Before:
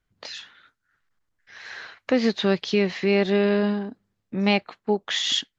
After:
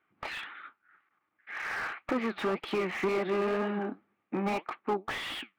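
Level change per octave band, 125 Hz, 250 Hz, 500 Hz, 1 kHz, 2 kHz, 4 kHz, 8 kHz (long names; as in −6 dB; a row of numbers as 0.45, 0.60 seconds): −11.5 dB, −10.5 dB, −8.0 dB, −1.5 dB, −5.0 dB, −15.0 dB, can't be measured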